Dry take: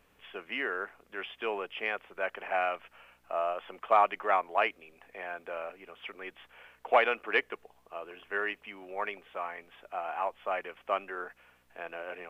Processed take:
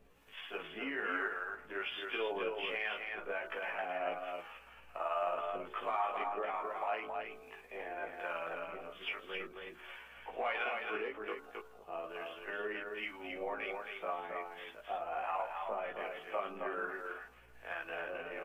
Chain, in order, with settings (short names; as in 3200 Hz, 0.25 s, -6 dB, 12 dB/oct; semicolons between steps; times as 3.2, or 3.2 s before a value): de-hum 73.55 Hz, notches 21; in parallel at -1 dB: compressor, threshold -39 dBFS, peak gain reduction 19 dB; on the sum: limiter -22 dBFS, peak gain reduction 11 dB; harmonic tremolo 1.9 Hz, depth 70%, crossover 670 Hz; granular stretch 1.5×, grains 0.11 s; chorus voices 4, 0.22 Hz, delay 16 ms, depth 4.9 ms; echo 0.268 s -4.5 dB; gain +2.5 dB